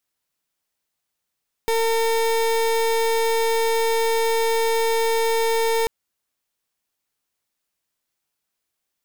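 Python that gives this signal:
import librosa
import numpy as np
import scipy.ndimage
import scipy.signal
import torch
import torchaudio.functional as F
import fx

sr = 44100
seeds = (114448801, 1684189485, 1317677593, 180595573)

y = fx.pulse(sr, length_s=4.19, hz=454.0, level_db=-20.0, duty_pct=31)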